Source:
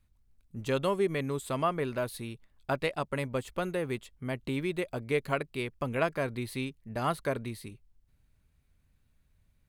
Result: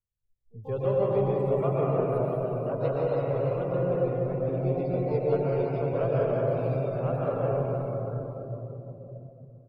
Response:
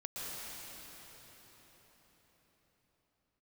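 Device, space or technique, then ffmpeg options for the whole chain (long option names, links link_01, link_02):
shimmer-style reverb: -filter_complex "[0:a]asplit=2[link_01][link_02];[link_02]asetrate=88200,aresample=44100,atempo=0.5,volume=-9dB[link_03];[link_01][link_03]amix=inputs=2:normalize=0[link_04];[1:a]atrim=start_sample=2205[link_05];[link_04][link_05]afir=irnorm=-1:irlink=0,afftdn=noise_reduction=20:noise_floor=-40,equalizer=frequency=125:width_type=o:width=1:gain=6,equalizer=frequency=250:width_type=o:width=1:gain=-7,equalizer=frequency=500:width_type=o:width=1:gain=9,equalizer=frequency=1000:width_type=o:width=1:gain=-4,equalizer=frequency=2000:width_type=o:width=1:gain=-11,equalizer=frequency=4000:width_type=o:width=1:gain=-6,equalizer=frequency=8000:width_type=o:width=1:gain=-12,asplit=2[link_06][link_07];[link_07]adelay=341,lowpass=frequency=1000:poles=1,volume=-12dB,asplit=2[link_08][link_09];[link_09]adelay=341,lowpass=frequency=1000:poles=1,volume=0.54,asplit=2[link_10][link_11];[link_11]adelay=341,lowpass=frequency=1000:poles=1,volume=0.54,asplit=2[link_12][link_13];[link_13]adelay=341,lowpass=frequency=1000:poles=1,volume=0.54,asplit=2[link_14][link_15];[link_15]adelay=341,lowpass=frequency=1000:poles=1,volume=0.54,asplit=2[link_16][link_17];[link_17]adelay=341,lowpass=frequency=1000:poles=1,volume=0.54[link_18];[link_06][link_08][link_10][link_12][link_14][link_16][link_18]amix=inputs=7:normalize=0"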